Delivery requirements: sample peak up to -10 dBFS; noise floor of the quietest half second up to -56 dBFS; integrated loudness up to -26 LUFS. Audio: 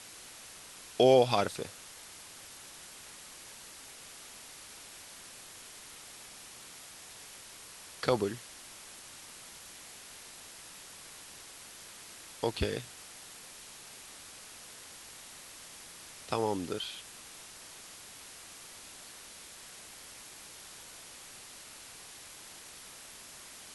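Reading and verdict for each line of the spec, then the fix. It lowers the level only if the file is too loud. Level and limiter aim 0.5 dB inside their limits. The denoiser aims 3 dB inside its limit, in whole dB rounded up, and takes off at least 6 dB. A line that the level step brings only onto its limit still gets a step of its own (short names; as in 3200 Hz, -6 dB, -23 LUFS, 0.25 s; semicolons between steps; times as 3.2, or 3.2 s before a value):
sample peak -11.0 dBFS: OK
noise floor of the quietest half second -50 dBFS: fail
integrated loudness -38.5 LUFS: OK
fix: denoiser 9 dB, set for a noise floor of -50 dBFS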